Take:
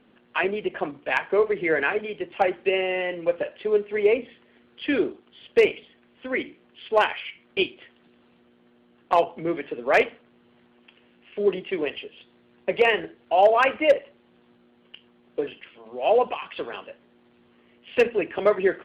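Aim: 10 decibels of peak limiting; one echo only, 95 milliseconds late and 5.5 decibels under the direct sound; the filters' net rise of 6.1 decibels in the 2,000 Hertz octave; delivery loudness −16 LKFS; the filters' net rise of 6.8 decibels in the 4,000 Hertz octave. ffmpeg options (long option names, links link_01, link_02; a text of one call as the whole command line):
ffmpeg -i in.wav -af "equalizer=frequency=2000:width_type=o:gain=5.5,equalizer=frequency=4000:width_type=o:gain=7.5,alimiter=limit=-12.5dB:level=0:latency=1,aecho=1:1:95:0.531,volume=8dB" out.wav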